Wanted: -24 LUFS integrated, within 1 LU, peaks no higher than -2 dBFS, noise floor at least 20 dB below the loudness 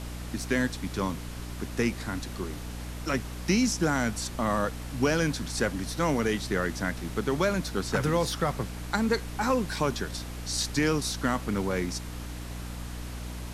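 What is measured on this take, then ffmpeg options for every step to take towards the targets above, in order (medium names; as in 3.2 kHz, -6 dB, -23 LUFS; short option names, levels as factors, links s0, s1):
hum 60 Hz; highest harmonic 300 Hz; hum level -36 dBFS; noise floor -38 dBFS; noise floor target -50 dBFS; loudness -29.5 LUFS; peak level -12.0 dBFS; loudness target -24.0 LUFS
-> -af "bandreject=f=60:t=h:w=6,bandreject=f=120:t=h:w=6,bandreject=f=180:t=h:w=6,bandreject=f=240:t=h:w=6,bandreject=f=300:t=h:w=6"
-af "afftdn=nr=12:nf=-38"
-af "volume=1.88"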